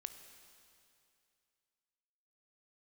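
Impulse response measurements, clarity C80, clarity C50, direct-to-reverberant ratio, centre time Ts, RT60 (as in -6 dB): 9.5 dB, 9.0 dB, 8.0 dB, 28 ms, 2.5 s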